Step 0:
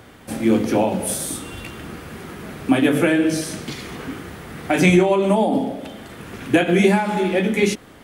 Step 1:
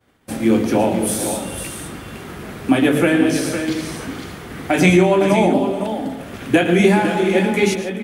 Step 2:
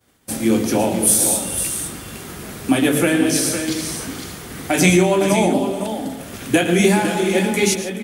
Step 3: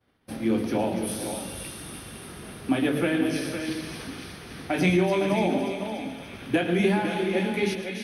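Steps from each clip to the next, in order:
expander -34 dBFS; on a send: tapped delay 0.113/0.146/0.428/0.508 s -13.5/-17/-15/-8.5 dB; on the sum: gain +1.5 dB
tone controls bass +1 dB, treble +12 dB; gain -2 dB
running mean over 6 samples; thin delay 0.29 s, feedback 69%, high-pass 2300 Hz, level -5.5 dB; gain -7.5 dB

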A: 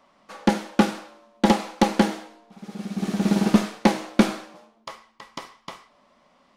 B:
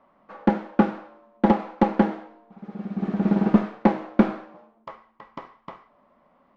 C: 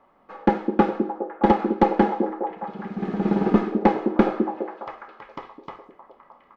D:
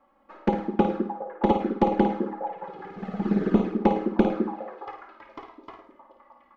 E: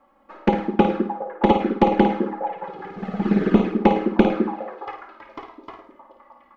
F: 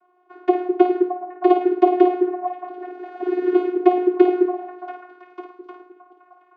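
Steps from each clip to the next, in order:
LPF 1500 Hz 12 dB/oct
comb 2.4 ms, depth 38%; delay with a stepping band-pass 0.206 s, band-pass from 310 Hz, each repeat 0.7 oct, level -3 dB; gain +1.5 dB
envelope flanger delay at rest 3.7 ms, full sweep at -14.5 dBFS; flutter echo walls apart 9.2 m, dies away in 0.41 s; gain -2 dB
dynamic EQ 2500 Hz, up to +6 dB, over -47 dBFS, Q 1.1; gain +4.5 dB
vocoder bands 16, saw 361 Hz; gain +2.5 dB

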